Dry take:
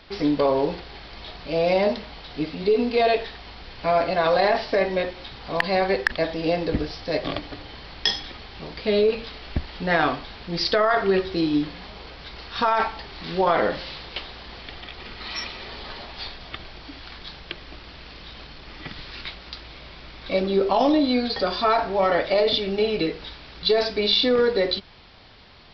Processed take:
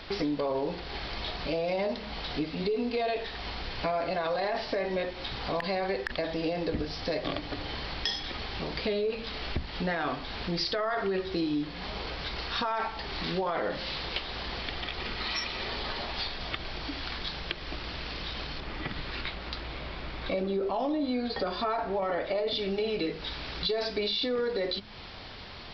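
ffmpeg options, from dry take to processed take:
ffmpeg -i in.wav -filter_complex "[0:a]asettb=1/sr,asplit=3[link_01][link_02][link_03];[link_01]atrim=end=18.604[link_04];[link_02]atrim=start=18.6:end=22.51,asetpts=PTS-STARTPTS,afade=type=in:duration=0.004:curve=qsin,afade=type=out:start_time=3.906:duration=0.004:curve=qsin,lowpass=frequency=2300:poles=1[link_05];[link_03]atrim=start=22.506[link_06];[link_04][link_05]acrossfade=duration=0.004:curve1=hsin:curve2=qsin[link_07];[link_07][link_06]acrossfade=duration=0.004:curve1=qsin:curve2=hsin,bandreject=frequency=52.9:width_type=h:width=4,bandreject=frequency=105.8:width_type=h:width=4,bandreject=frequency=158.7:width_type=h:width=4,bandreject=frequency=211.6:width_type=h:width=4,bandreject=frequency=264.5:width_type=h:width=4,alimiter=limit=-15.5dB:level=0:latency=1:release=18,acompressor=threshold=-37dB:ratio=3,volume=5.5dB" out.wav

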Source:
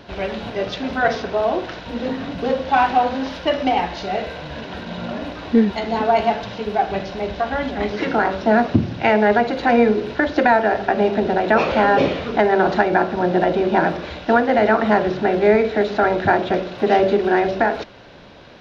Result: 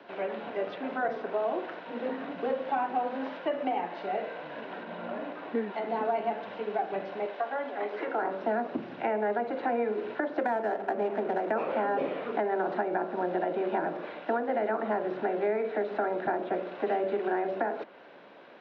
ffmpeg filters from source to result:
ffmpeg -i in.wav -filter_complex "[0:a]asettb=1/sr,asplit=3[link_01][link_02][link_03];[link_01]atrim=end=4.834[link_04];[link_02]atrim=start=4.83:end=5.74,asetpts=PTS-STARTPTS,afade=type=in:duration=0.004:curve=qsin,afade=type=out:start_time=0.906:duration=0.004:curve=qsin,highshelf=frequency=4600:gain=-8[link_05];[link_03]atrim=start=5.736[link_06];[link_04][link_05]acrossfade=duration=0.004:curve1=hsin:curve2=qsin[link_07];[link_07][link_06]acrossfade=duration=0.004:curve1=qsin:curve2=hsin,asettb=1/sr,asplit=3[link_08][link_09][link_10];[link_08]atrim=end=7.254[link_11];[link_09]atrim=start=7.25:end=8.22,asetpts=PTS-STARTPTS,afade=type=in:duration=0.004:curve=qsin,afade=type=out:start_time=0.966:duration=0.004:curve=qsin,highpass=390[link_12];[link_10]atrim=start=8.216[link_13];[link_11][link_12]acrossfade=duration=0.004:curve1=hsin:curve2=qsin[link_14];[link_14][link_13]acrossfade=duration=0.004:curve1=qsin:curve2=hsin,asettb=1/sr,asplit=3[link_15][link_16][link_17];[link_15]atrim=end=10.404[link_18];[link_16]atrim=start=10.4:end=11.51,asetpts=PTS-STARTPTS,afade=type=in:duration=0.004:curve=qsin,afade=type=out:start_time=1.106:duration=0.004:curve=qsin,adynamicsmooth=sensitivity=3:basefreq=640[link_19];[link_17]atrim=start=11.506[link_20];[link_18][link_19]acrossfade=duration=0.004:curve1=hsin:curve2=qsin[link_21];[link_21][link_20]acrossfade=duration=0.004:curve1=qsin:curve2=hsin,highpass=frequency=140:width=0.5412,highpass=frequency=140:width=1.3066,acrossover=split=260 2900:gain=0.158 1 0.112[link_22][link_23][link_24];[link_22][link_23][link_24]amix=inputs=3:normalize=0,acrossover=split=200|470|1400|3700[link_25][link_26][link_27][link_28][link_29];[link_25]acompressor=threshold=-38dB:ratio=4[link_30];[link_26]acompressor=threshold=-28dB:ratio=4[link_31];[link_27]acompressor=threshold=-25dB:ratio=4[link_32];[link_28]acompressor=threshold=-40dB:ratio=4[link_33];[link_29]acompressor=threshold=-60dB:ratio=4[link_34];[link_30][link_31][link_32][link_33][link_34]amix=inputs=5:normalize=0,volume=-6dB" out.wav

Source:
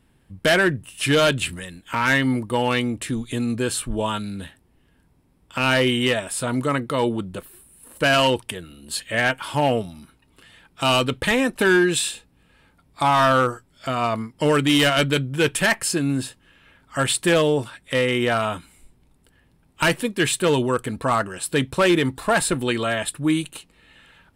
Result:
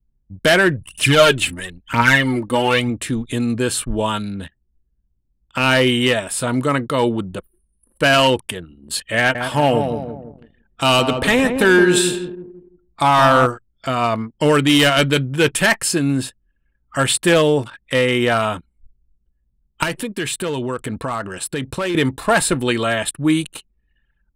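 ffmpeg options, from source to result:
ffmpeg -i in.wav -filter_complex "[0:a]asplit=3[link_01][link_02][link_03];[link_01]afade=type=out:start_time=0.73:duration=0.02[link_04];[link_02]aphaser=in_gain=1:out_gain=1:delay=3.9:decay=0.58:speed=1:type=triangular,afade=type=in:start_time=0.73:duration=0.02,afade=type=out:start_time=2.89:duration=0.02[link_05];[link_03]afade=type=in:start_time=2.89:duration=0.02[link_06];[link_04][link_05][link_06]amix=inputs=3:normalize=0,asettb=1/sr,asplit=3[link_07][link_08][link_09];[link_07]atrim=end=9.184[link_10];[link_08]atrim=start=9.18:end=13.46,asetpts=PTS-STARTPTS,afade=type=in:duration=0.004:curve=qsin,afade=type=out:start_time=4.276:duration=0.004:curve=qsin,asplit=2[link_11][link_12];[link_12]adelay=168,lowpass=frequency=950:poles=1,volume=-5dB,asplit=2[link_13][link_14];[link_14]adelay=168,lowpass=frequency=950:poles=1,volume=0.51,asplit=2[link_15][link_16];[link_16]adelay=168,lowpass=frequency=950:poles=1,volume=0.51,asplit=2[link_17][link_18];[link_18]adelay=168,lowpass=frequency=950:poles=1,volume=0.51,asplit=2[link_19][link_20];[link_20]adelay=168,lowpass=frequency=950:poles=1,volume=0.51,asplit=2[link_21][link_22];[link_22]adelay=168,lowpass=frequency=950:poles=1,volume=0.51[link_23];[link_11][link_13][link_15][link_17][link_19][link_21][link_23]amix=inputs=7:normalize=0,atrim=end_sample=188748[link_24];[link_09]atrim=start=13.456[link_25];[link_10][link_24]acrossfade=duration=0.004:curve1=hsin:curve2=qsin[link_26];[link_26][link_25]acrossfade=duration=0.004:curve1=qsin:curve2=hsin,asettb=1/sr,asplit=3[link_27][link_28][link_29];[link_27]atrim=end=19.834[link_30];[link_28]atrim=start=19.83:end=21.95,asetpts=PTS-STARTPTS,afade=type=in:duration=0.004:curve=qsin,afade=type=out:start_time=2.116:duration=0.004:curve=qsin,acompressor=threshold=-24dB:ratio=5:attack=3.2:release=140:knee=1:detection=peak[link_31];[link_29]atrim=start=21.946[link_32];[link_30][link_31]acrossfade=duration=0.004:curve1=hsin:curve2=qsin[link_33];[link_33][link_32]acrossfade=duration=0.004:curve1=qsin:curve2=hsin,anlmdn=0.631,volume=4dB" out.wav

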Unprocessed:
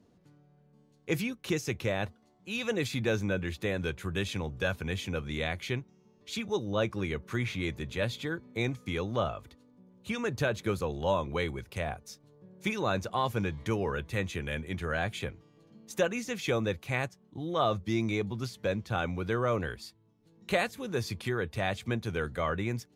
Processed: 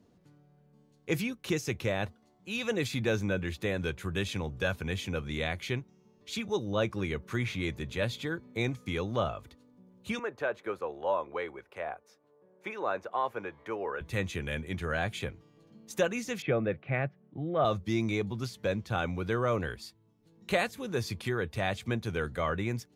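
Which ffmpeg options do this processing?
ffmpeg -i in.wav -filter_complex "[0:a]asettb=1/sr,asplit=3[link_01][link_02][link_03];[link_01]atrim=end=10.194[link_04];[link_02]atrim=start=10.19:end=14.01,asetpts=PTS-STARTPTS,afade=type=in:duration=0.004:curve=qsin,afade=type=out:start_time=3.816:duration=0.004:curve=qsin,acrossover=split=350 2200:gain=0.0794 1 0.126[link_05][link_06][link_07];[link_05][link_06][link_07]amix=inputs=3:normalize=0[link_08];[link_03]atrim=start=14.006[link_09];[link_04][link_08]acrossfade=duration=0.004:curve1=hsin:curve2=qsin[link_10];[link_10][link_09]acrossfade=duration=0.004:curve1=qsin:curve2=hsin,asettb=1/sr,asplit=3[link_11][link_12][link_13];[link_11]atrim=end=16.424[link_14];[link_12]atrim=start=16.42:end=17.65,asetpts=PTS-STARTPTS,afade=type=in:duration=0.004:curve=qsin,afade=type=out:start_time=1.226:duration=0.004:curve=qsin,highpass=120,equalizer=frequency=140:width_type=q:width=4:gain=7,equalizer=frequency=630:width_type=q:width=4:gain=5,equalizer=frequency=970:width_type=q:width=4:gain=-9,lowpass=frequency=2400:width=0.5412,lowpass=frequency=2400:width=1.3066[link_15];[link_13]atrim=start=17.646[link_16];[link_14][link_15]acrossfade=duration=0.004:curve1=hsin:curve2=qsin[link_17];[link_17][link_16]acrossfade=duration=0.004:curve1=qsin:curve2=hsin" out.wav

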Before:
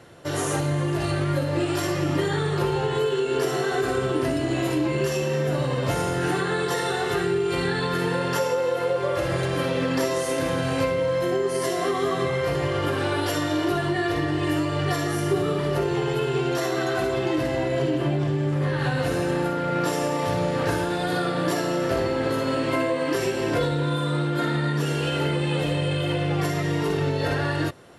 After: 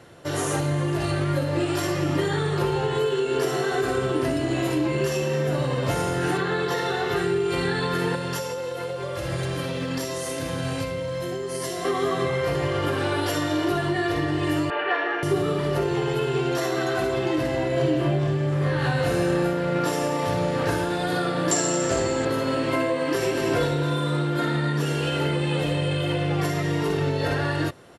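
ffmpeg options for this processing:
ffmpeg -i in.wav -filter_complex "[0:a]asettb=1/sr,asplit=3[link_01][link_02][link_03];[link_01]atrim=end=6.374[link_04];[link_02]atrim=start=6.37:end=7.16,asetpts=PTS-STARTPTS,afade=type=in:duration=0.004:curve=qsin,afade=type=out:start_time=0.786:duration=0.004:curve=qsin,equalizer=frequency=8900:width_type=o:width=0.59:gain=-12[link_05];[link_03]atrim=start=7.156[link_06];[link_04][link_05]acrossfade=duration=0.004:curve1=hsin:curve2=qsin[link_07];[link_07][link_06]acrossfade=duration=0.004:curve1=qsin:curve2=hsin,asettb=1/sr,asplit=3[link_08][link_09][link_10];[link_08]atrim=end=8.154[link_11];[link_09]atrim=start=8.15:end=11.85,asetpts=PTS-STARTPTS,afade=type=in:duration=0.004:curve=qsin,afade=type=out:start_time=3.696:duration=0.004:curve=qsin,acrossover=split=190|3000[link_12][link_13][link_14];[link_13]acompressor=threshold=-28dB:ratio=6:attack=3.2:release=140:knee=2.83:detection=peak[link_15];[link_12][link_15][link_14]amix=inputs=3:normalize=0[link_16];[link_10]atrim=start=11.846[link_17];[link_11][link_16]acrossfade=duration=0.004:curve1=hsin:curve2=qsin[link_18];[link_18][link_17]acrossfade=duration=0.004:curve1=qsin:curve2=hsin,asettb=1/sr,asplit=3[link_19][link_20][link_21];[link_19]atrim=end=14.704[link_22];[link_20]atrim=start=14.7:end=15.23,asetpts=PTS-STARTPTS,afade=type=in:duration=0.004:curve=qsin,afade=type=out:start_time=0.526:duration=0.004:curve=qsin,highpass=frequency=380:width=0.5412,highpass=frequency=380:width=1.3066,equalizer=frequency=430:width_type=q:width=4:gain=3,equalizer=frequency=880:width_type=q:width=4:gain=7,equalizer=frequency=1600:width_type=q:width=4:gain=10,equalizer=frequency=2600:width_type=q:width=4:gain=7,lowpass=frequency=3000:width=0.5412,lowpass=frequency=3000:width=1.3066[link_23];[link_21]atrim=start=15.226[link_24];[link_22][link_23]acrossfade=duration=0.004:curve1=hsin:curve2=qsin[link_25];[link_25][link_24]acrossfade=duration=0.004:curve1=qsin:curve2=hsin,asettb=1/sr,asplit=3[link_26][link_27][link_28];[link_26]atrim=end=17.744[link_29];[link_27]atrim=start=17.74:end=19.79,asetpts=PTS-STARTPTS,afade=type=in:duration=0.004:curve=qsin,afade=type=out:start_time=2.046:duration=0.004:curve=qsin,asplit=2[link_30][link_31];[link_31]adelay=29,volume=-6dB[link_32];[link_30][link_32]amix=inputs=2:normalize=0,atrim=end_sample=90405[link_33];[link_28]atrim=start=19.786[link_34];[link_29][link_33]acrossfade=duration=0.004:curve1=hsin:curve2=qsin[link_35];[link_35][link_34]acrossfade=duration=0.004:curve1=qsin:curve2=hsin,asettb=1/sr,asplit=3[link_36][link_37][link_38];[link_36]atrim=end=21.514[link_39];[link_37]atrim=start=21.51:end=22.25,asetpts=PTS-STARTPTS,afade=type=in:duration=0.004:curve=qsin,afade=type=out:start_time=0.736:duration=0.004:curve=qsin,lowpass=frequency=7400:width_type=q:width=9.6[link_40];[link_38]atrim=start=22.246[link_41];[link_39][link_40]acrossfade=duration=0.004:curve1=hsin:curve2=qsin[link_42];[link_42][link_41]acrossfade=duration=0.004:curve1=qsin:curve2=hsin,asplit=2[link_43][link_44];[link_44]afade=type=in:start_time=22.99:duration=0.01,afade=type=out:start_time=23.44:duration=0.01,aecho=0:1:230|460|690|920|1150|1380|1610:0.501187|0.275653|0.151609|0.083385|0.0458618|0.025224|0.0138732[link_45];[link_43][link_45]amix=inputs=2:normalize=0" out.wav

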